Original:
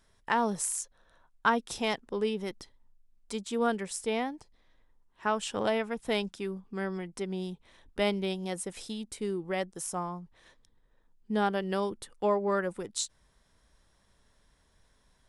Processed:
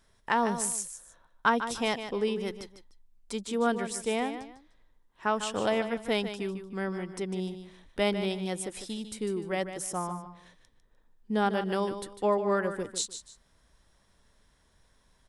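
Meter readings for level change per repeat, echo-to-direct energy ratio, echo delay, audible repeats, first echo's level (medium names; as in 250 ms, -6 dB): -11.0 dB, -9.5 dB, 150 ms, 2, -10.0 dB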